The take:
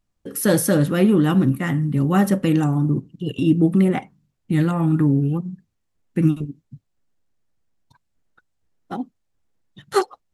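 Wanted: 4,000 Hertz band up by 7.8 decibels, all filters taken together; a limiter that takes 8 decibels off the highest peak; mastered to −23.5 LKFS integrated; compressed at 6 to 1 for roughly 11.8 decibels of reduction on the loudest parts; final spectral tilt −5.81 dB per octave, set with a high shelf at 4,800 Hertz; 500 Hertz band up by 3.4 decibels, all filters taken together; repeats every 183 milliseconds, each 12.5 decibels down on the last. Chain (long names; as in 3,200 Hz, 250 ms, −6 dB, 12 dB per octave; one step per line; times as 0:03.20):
parametric band 500 Hz +4.5 dB
parametric band 4,000 Hz +6.5 dB
high-shelf EQ 4,800 Hz +8 dB
downward compressor 6 to 1, threshold −23 dBFS
brickwall limiter −19 dBFS
repeating echo 183 ms, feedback 24%, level −12.5 dB
level +5 dB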